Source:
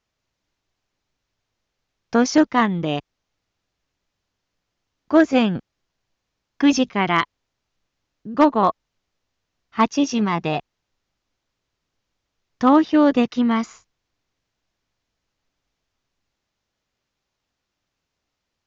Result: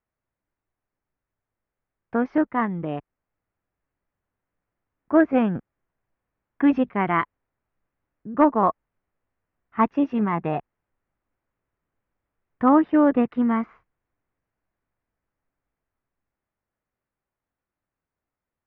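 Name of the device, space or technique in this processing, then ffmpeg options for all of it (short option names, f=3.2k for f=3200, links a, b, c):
action camera in a waterproof case: -af "lowpass=f=2k:w=0.5412,lowpass=f=2k:w=1.3066,dynaudnorm=f=370:g=21:m=15dB,volume=-6.5dB" -ar 48000 -c:a aac -b:a 128k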